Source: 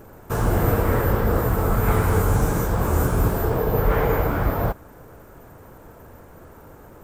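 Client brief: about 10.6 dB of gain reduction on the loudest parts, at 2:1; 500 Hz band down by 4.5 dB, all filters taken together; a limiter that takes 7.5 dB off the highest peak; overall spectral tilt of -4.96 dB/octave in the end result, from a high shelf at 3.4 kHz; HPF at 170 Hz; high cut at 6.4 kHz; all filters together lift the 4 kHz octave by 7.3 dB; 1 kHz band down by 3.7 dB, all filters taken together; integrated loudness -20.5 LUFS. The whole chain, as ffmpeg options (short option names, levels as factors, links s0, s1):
-af "highpass=170,lowpass=6400,equalizer=f=500:t=o:g=-4.5,equalizer=f=1000:t=o:g=-4.5,highshelf=f=3400:g=6.5,equalizer=f=4000:t=o:g=6,acompressor=threshold=0.00794:ratio=2,volume=10.6,alimiter=limit=0.316:level=0:latency=1"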